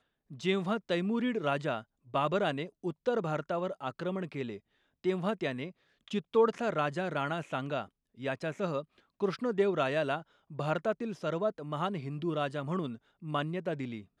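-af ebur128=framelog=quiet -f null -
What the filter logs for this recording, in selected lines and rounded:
Integrated loudness:
  I:         -33.4 LUFS
  Threshold: -43.6 LUFS
Loudness range:
  LRA:         2.4 LU
  Threshold: -53.6 LUFS
  LRA low:   -35.2 LUFS
  LRA high:  -32.7 LUFS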